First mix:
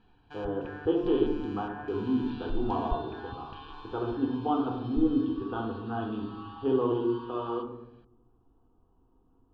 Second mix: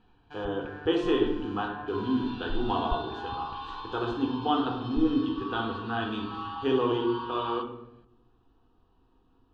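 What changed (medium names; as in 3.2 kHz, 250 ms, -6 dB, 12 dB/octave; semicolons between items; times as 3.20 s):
speech: remove boxcar filter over 21 samples; second sound +9.0 dB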